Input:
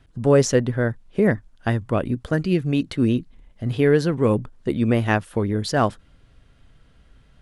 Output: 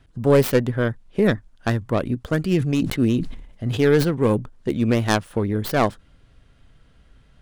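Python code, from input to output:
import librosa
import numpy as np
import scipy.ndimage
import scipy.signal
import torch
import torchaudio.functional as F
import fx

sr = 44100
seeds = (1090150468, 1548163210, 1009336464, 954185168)

y = fx.tracing_dist(x, sr, depth_ms=0.38)
y = fx.sustainer(y, sr, db_per_s=71.0, at=(2.49, 4.03), fade=0.02)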